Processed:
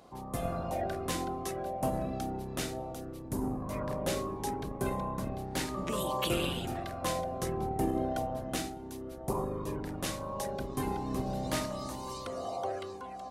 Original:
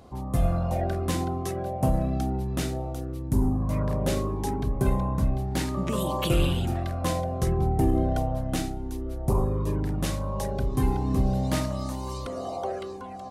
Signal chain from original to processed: octaver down 2 oct, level +2 dB; HPF 450 Hz 6 dB/oct; gain -2 dB

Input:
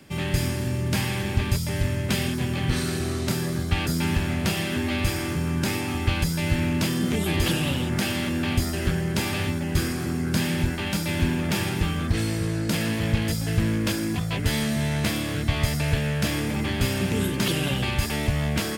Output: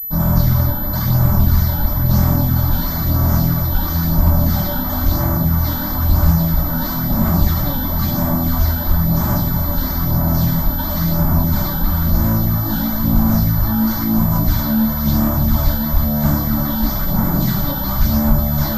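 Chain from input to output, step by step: Chebyshev band-stop 1200–3400 Hz, order 3; sample-and-hold 4×; fuzz box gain 38 dB, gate -45 dBFS; phaser stages 12, 1 Hz, lowest notch 110–4700 Hz; fixed phaser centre 1100 Hz, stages 4; thin delay 1.124 s, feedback 65%, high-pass 3700 Hz, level -7 dB; shoebox room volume 39 m³, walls mixed, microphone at 2.5 m; pulse-width modulation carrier 12000 Hz; gain -14 dB

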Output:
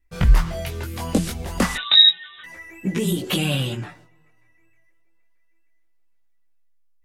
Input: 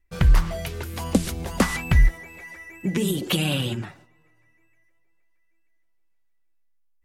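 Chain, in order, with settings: 1.75–2.44 inverted band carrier 3800 Hz; chorus voices 2, 0.32 Hz, delay 20 ms, depth 4.7 ms; gain +4 dB

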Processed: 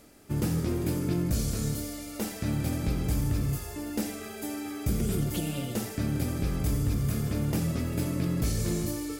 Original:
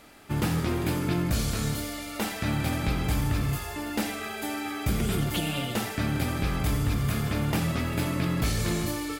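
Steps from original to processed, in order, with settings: band shelf 1700 Hz -8.5 dB 2.8 oct; reverse; upward compressor, threshold -41 dBFS; reverse; gain -1 dB

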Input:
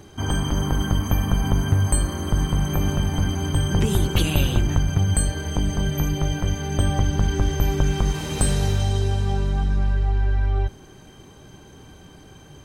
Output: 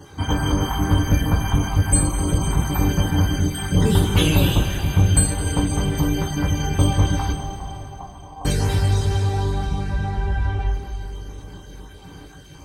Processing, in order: random spectral dropouts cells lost 30%; 7.31–8.45 vocal tract filter a; two-slope reverb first 0.21 s, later 3.7 s, from -19 dB, DRR -9.5 dB; gain -4.5 dB

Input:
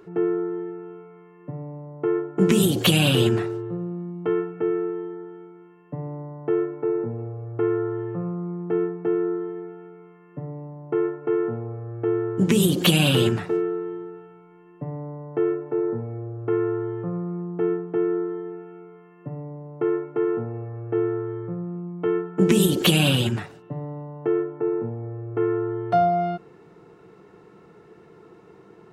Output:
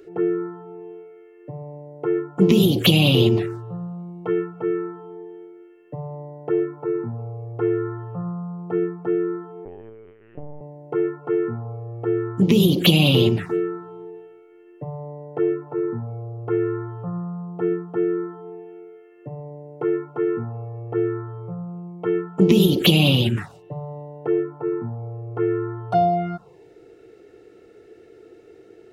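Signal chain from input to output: envelope phaser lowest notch 160 Hz, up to 1600 Hz, full sweep at -16.5 dBFS; 9.65–10.61 LPC vocoder at 8 kHz pitch kept; gain +3.5 dB

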